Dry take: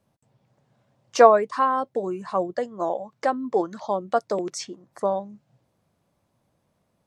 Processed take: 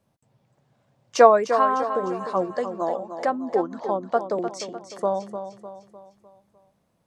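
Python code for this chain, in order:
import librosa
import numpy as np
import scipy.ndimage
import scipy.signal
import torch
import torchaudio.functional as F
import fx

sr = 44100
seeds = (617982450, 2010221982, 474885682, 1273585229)

p1 = fx.high_shelf(x, sr, hz=3600.0, db=-10.5, at=(3.25, 4.6))
y = p1 + fx.echo_feedback(p1, sr, ms=302, feedback_pct=46, wet_db=-9.5, dry=0)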